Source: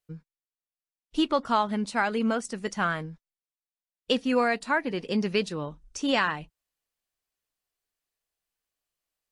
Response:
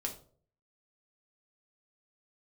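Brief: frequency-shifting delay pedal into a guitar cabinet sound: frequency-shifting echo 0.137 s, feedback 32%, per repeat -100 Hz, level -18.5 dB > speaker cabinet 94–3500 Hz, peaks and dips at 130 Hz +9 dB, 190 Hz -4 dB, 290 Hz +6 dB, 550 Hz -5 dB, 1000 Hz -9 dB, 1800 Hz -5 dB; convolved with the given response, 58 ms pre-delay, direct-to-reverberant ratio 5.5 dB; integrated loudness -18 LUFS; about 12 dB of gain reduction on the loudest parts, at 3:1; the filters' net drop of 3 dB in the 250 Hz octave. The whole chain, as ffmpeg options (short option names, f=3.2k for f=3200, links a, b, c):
-filter_complex "[0:a]equalizer=f=250:t=o:g=-6,acompressor=threshold=-37dB:ratio=3,asplit=2[a][b];[1:a]atrim=start_sample=2205,adelay=58[c];[b][c]afir=irnorm=-1:irlink=0,volume=-6dB[d];[a][d]amix=inputs=2:normalize=0,asplit=4[e][f][g][h];[f]adelay=137,afreqshift=-100,volume=-18.5dB[i];[g]adelay=274,afreqshift=-200,volume=-28.4dB[j];[h]adelay=411,afreqshift=-300,volume=-38.3dB[k];[e][i][j][k]amix=inputs=4:normalize=0,highpass=94,equalizer=f=130:t=q:w=4:g=9,equalizer=f=190:t=q:w=4:g=-4,equalizer=f=290:t=q:w=4:g=6,equalizer=f=550:t=q:w=4:g=-5,equalizer=f=1k:t=q:w=4:g=-9,equalizer=f=1.8k:t=q:w=4:g=-5,lowpass=f=3.5k:w=0.5412,lowpass=f=3.5k:w=1.3066,volume=20.5dB"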